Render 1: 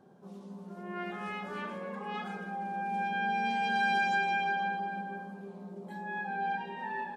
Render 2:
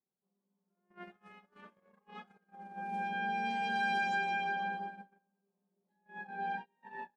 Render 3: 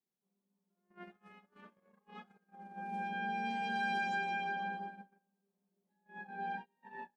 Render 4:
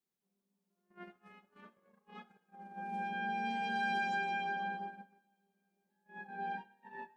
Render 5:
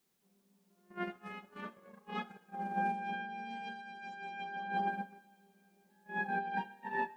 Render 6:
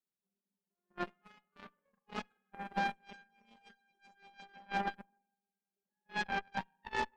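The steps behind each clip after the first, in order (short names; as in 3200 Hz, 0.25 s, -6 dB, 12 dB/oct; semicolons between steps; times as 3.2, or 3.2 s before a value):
gate -35 dBFS, range -34 dB; gain -4 dB
bell 240 Hz +3.5 dB 1.1 oct; gain -3 dB
reverb, pre-delay 3 ms, DRR 16.5 dB
negative-ratio compressor -43 dBFS, ratio -0.5; gain +6.5 dB
reverb removal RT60 1.6 s; spring tank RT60 1.1 s, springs 41/47 ms, chirp 50 ms, DRR 15 dB; added harmonics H 2 -7 dB, 7 -18 dB, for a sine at -23.5 dBFS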